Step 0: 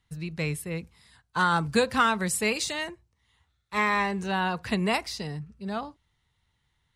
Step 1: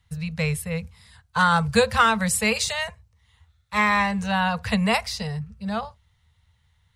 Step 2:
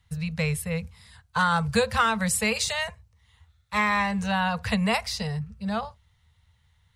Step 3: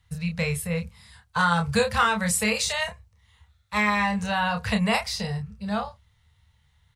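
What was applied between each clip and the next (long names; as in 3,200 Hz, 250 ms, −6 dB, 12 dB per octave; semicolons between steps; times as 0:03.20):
elliptic band-stop filter 220–450 Hz; parametric band 83 Hz +11.5 dB 0.73 octaves; level +5 dB
downward compressor 1.5 to 1, threshold −25 dBFS, peak gain reduction 5 dB
double-tracking delay 29 ms −5.5 dB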